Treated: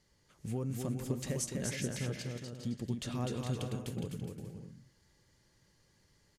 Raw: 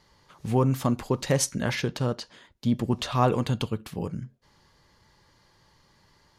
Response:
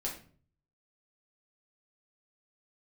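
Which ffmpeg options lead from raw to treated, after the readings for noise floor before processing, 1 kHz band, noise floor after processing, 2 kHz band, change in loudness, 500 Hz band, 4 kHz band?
-63 dBFS, -19.0 dB, -71 dBFS, -11.0 dB, -11.0 dB, -12.5 dB, -10.5 dB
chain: -filter_complex "[0:a]equalizer=f=1000:t=o:w=1:g=-11,equalizer=f=4000:t=o:w=1:g=-5,equalizer=f=8000:t=o:w=1:g=6,acompressor=threshold=0.0562:ratio=6,asplit=2[s0][s1];[s1]aecho=0:1:250|412.5|518.1|586.8|631.4:0.631|0.398|0.251|0.158|0.1[s2];[s0][s2]amix=inputs=2:normalize=0,volume=0.398"

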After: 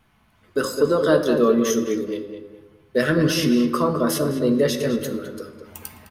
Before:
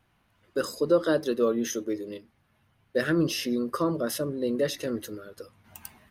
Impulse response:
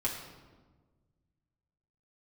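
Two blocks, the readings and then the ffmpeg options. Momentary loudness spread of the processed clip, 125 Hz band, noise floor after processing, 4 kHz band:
19 LU, +9.0 dB, -60 dBFS, +6.5 dB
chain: -filter_complex "[0:a]asplit=2[s0][s1];[s1]adelay=209,lowpass=f=2500:p=1,volume=0.447,asplit=2[s2][s3];[s3]adelay=209,lowpass=f=2500:p=1,volume=0.32,asplit=2[s4][s5];[s5]adelay=209,lowpass=f=2500:p=1,volume=0.32,asplit=2[s6][s7];[s7]adelay=209,lowpass=f=2500:p=1,volume=0.32[s8];[s0][s2][s4][s6][s8]amix=inputs=5:normalize=0,asplit=2[s9][s10];[1:a]atrim=start_sample=2205,afade=t=out:st=0.38:d=0.01,atrim=end_sample=17199[s11];[s10][s11]afir=irnorm=-1:irlink=0,volume=0.473[s12];[s9][s12]amix=inputs=2:normalize=0,volume=1.5"

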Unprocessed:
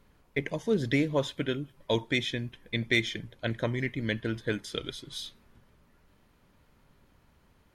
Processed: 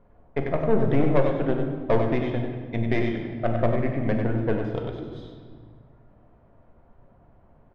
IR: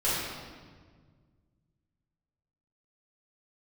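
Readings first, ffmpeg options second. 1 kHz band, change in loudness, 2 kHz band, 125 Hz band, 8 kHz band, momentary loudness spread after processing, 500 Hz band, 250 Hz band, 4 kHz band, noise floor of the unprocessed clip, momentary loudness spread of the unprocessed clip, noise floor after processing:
+10.5 dB, +5.5 dB, -3.5 dB, +7.5 dB, under -20 dB, 12 LU, +7.5 dB, +6.0 dB, -12.0 dB, -65 dBFS, 10 LU, -57 dBFS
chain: -filter_complex "[0:a]lowpass=1100,equalizer=f=680:w=4.3:g=11,aeval=exprs='(tanh(14.1*val(0)+0.65)-tanh(0.65))/14.1':c=same,aecho=1:1:96:0.473,asplit=2[s0][s1];[1:a]atrim=start_sample=2205[s2];[s1][s2]afir=irnorm=-1:irlink=0,volume=0.211[s3];[s0][s3]amix=inputs=2:normalize=0,volume=2"

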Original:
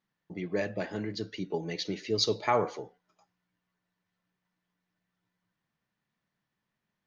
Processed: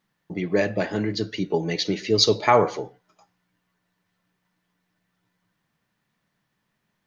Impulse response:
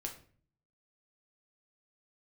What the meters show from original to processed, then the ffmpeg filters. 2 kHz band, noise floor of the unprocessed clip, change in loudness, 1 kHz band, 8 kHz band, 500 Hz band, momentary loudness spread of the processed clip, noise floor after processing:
+9.0 dB, -85 dBFS, +9.0 dB, +9.0 dB, no reading, +9.0 dB, 14 LU, -76 dBFS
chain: -filter_complex "[0:a]asplit=2[s0][s1];[1:a]atrim=start_sample=2205,afade=t=out:st=0.19:d=0.01,atrim=end_sample=8820[s2];[s1][s2]afir=irnorm=-1:irlink=0,volume=0.224[s3];[s0][s3]amix=inputs=2:normalize=0,volume=2.51"

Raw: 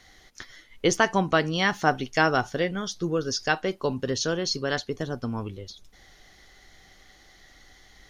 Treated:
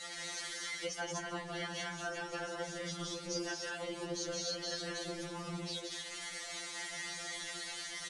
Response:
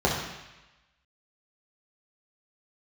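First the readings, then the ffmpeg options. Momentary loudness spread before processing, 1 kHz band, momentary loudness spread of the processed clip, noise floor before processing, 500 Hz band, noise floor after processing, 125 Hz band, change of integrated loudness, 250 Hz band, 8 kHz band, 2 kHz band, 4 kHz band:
17 LU, -16.5 dB, 4 LU, -56 dBFS, -14.5 dB, -46 dBFS, -15.5 dB, -14.0 dB, -15.0 dB, -5.0 dB, -12.5 dB, -7.0 dB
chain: -filter_complex "[0:a]aeval=exprs='val(0)+0.5*0.0398*sgn(val(0))':c=same,highpass=f=170:p=1,asplit=2[s0][s1];[1:a]atrim=start_sample=2205[s2];[s1][s2]afir=irnorm=-1:irlink=0,volume=0.0562[s3];[s0][s3]amix=inputs=2:normalize=0,aresample=22050,aresample=44100,lowshelf=f=390:g=-10,bandreject=f=5200:w=25,aecho=1:1:174.9|236.2:0.794|0.794,acompressor=threshold=0.0562:ratio=6,flanger=delay=4.2:depth=3.1:regen=48:speed=1.1:shape=sinusoidal,afftfilt=real='hypot(re,im)*cos(2*PI*random(0))':imag='hypot(re,im)*sin(2*PI*random(1))':win_size=512:overlap=0.75,adynamicequalizer=threshold=0.002:dfrequency=1000:dqfactor=1.2:tfrequency=1000:tqfactor=1.2:attack=5:release=100:ratio=0.375:range=2.5:mode=cutabove:tftype=bell,afftfilt=real='re*2.83*eq(mod(b,8),0)':imag='im*2.83*eq(mod(b,8),0)':win_size=2048:overlap=0.75,volume=1.33"

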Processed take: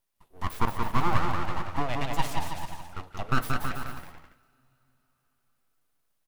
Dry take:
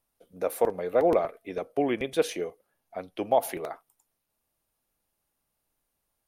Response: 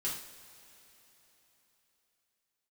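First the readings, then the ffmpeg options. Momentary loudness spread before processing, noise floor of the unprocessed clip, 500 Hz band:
15 LU, -80 dBFS, -13.5 dB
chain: -filter_complex "[0:a]aeval=exprs='abs(val(0))':c=same,aecho=1:1:180|324|439.2|531.4|605.1:0.631|0.398|0.251|0.158|0.1,asplit=2[s0][s1];[1:a]atrim=start_sample=2205[s2];[s1][s2]afir=irnorm=-1:irlink=0,volume=0.141[s3];[s0][s3]amix=inputs=2:normalize=0,volume=0.891"

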